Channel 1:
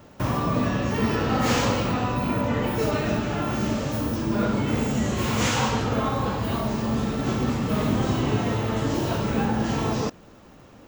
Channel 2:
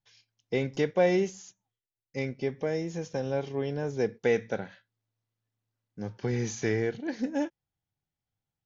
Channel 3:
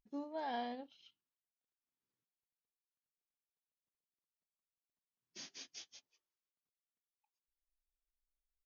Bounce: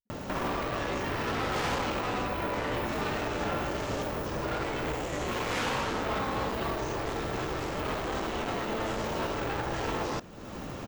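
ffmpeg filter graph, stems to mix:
-filter_complex "[0:a]acompressor=mode=upward:threshold=0.0398:ratio=2.5,adelay=100,volume=1.06[s0];[1:a]adelay=350,volume=0.501[s1];[2:a]volume=0.178[s2];[s0][s1][s2]amix=inputs=3:normalize=0,acrossover=split=3200[s3][s4];[s4]acompressor=threshold=0.00891:ratio=4:attack=1:release=60[s5];[s3][s5]amix=inputs=2:normalize=0,volume=20,asoftclip=hard,volume=0.0501,afftfilt=real='re*lt(hypot(re,im),0.2)':imag='im*lt(hypot(re,im),0.2)':win_size=1024:overlap=0.75"

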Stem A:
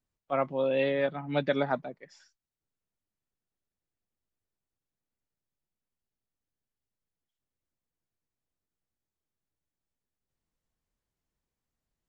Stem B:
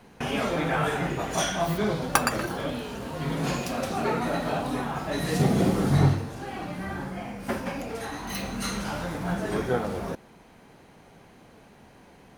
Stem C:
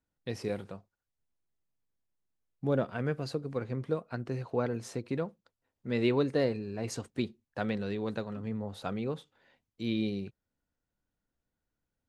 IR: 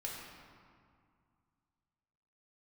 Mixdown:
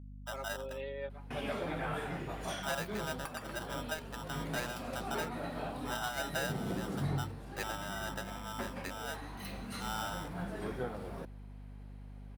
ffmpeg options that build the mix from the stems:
-filter_complex "[0:a]highpass=280,aecho=1:1:5.1:0.95,volume=0.141[s0];[1:a]equalizer=f=6300:t=o:w=0.34:g=-8.5,adelay=1100,volume=0.266[s1];[2:a]afwtdn=0.0141,lowshelf=f=370:g=-10.5,aeval=exprs='val(0)*sgn(sin(2*PI*1100*n/s))':c=same,volume=0.841[s2];[s0][s1][s2]amix=inputs=3:normalize=0,aeval=exprs='val(0)+0.00447*(sin(2*PI*50*n/s)+sin(2*PI*2*50*n/s)/2+sin(2*PI*3*50*n/s)/3+sin(2*PI*4*50*n/s)/4+sin(2*PI*5*50*n/s)/5)':c=same,alimiter=level_in=1.19:limit=0.0631:level=0:latency=1:release=343,volume=0.841"

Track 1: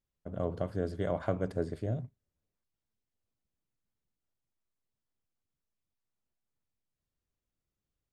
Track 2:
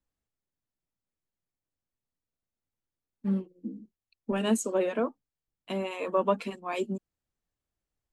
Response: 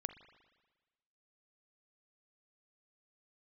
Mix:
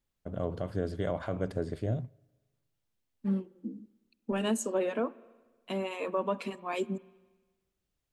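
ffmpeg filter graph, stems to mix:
-filter_complex "[0:a]equalizer=f=3100:w=1.5:g=3,volume=1.12,asplit=2[s0][s1];[s1]volume=0.188[s2];[1:a]volume=0.596,asplit=2[s3][s4];[s4]volume=0.562[s5];[2:a]atrim=start_sample=2205[s6];[s2][s5]amix=inputs=2:normalize=0[s7];[s7][s6]afir=irnorm=-1:irlink=0[s8];[s0][s3][s8]amix=inputs=3:normalize=0,alimiter=limit=0.0944:level=0:latency=1:release=93"

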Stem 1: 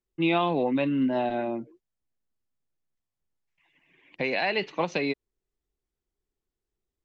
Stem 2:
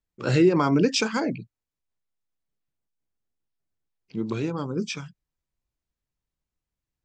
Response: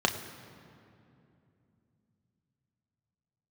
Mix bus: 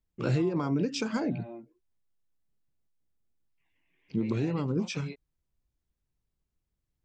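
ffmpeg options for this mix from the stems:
-filter_complex "[0:a]flanger=delay=17:depth=6.1:speed=0.92,volume=0.335[s0];[1:a]acompressor=threshold=0.0398:ratio=6,lowshelf=f=400:g=9,volume=0.708,asplit=2[s1][s2];[s2]apad=whole_len=310559[s3];[s0][s3]sidechaincompress=threshold=0.0178:ratio=8:attack=16:release=286[s4];[s4][s1]amix=inputs=2:normalize=0"

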